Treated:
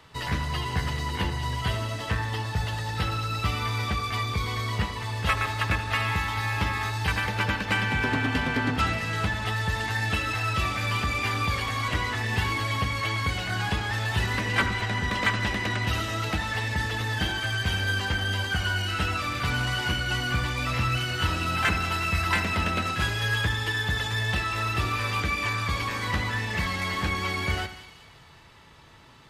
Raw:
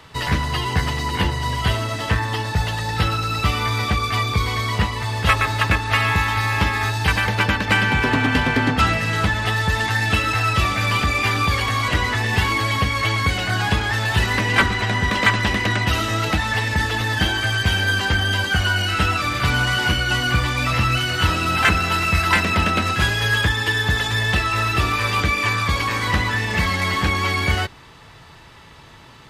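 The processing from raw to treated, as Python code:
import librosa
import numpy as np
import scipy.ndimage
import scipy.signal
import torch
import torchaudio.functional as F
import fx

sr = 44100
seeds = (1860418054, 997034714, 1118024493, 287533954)

y = fx.echo_split(x, sr, split_hz=2400.0, low_ms=81, high_ms=193, feedback_pct=52, wet_db=-12.0)
y = y * 10.0 ** (-8.0 / 20.0)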